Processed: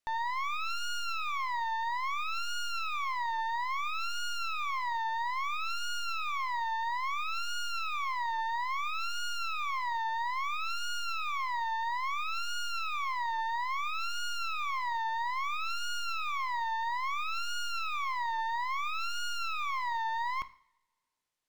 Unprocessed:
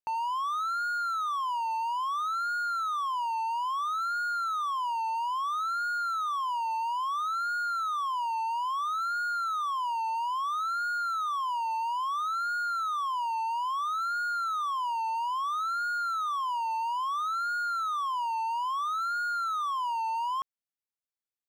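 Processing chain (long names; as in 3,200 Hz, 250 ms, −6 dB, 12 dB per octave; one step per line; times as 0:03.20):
stylus tracing distortion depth 0.2 ms
soft clipping −38 dBFS, distortion −10 dB
coupled-rooms reverb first 0.52 s, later 1.7 s, from −25 dB, DRR 12.5 dB
linearly interpolated sample-rate reduction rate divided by 2×
level +6.5 dB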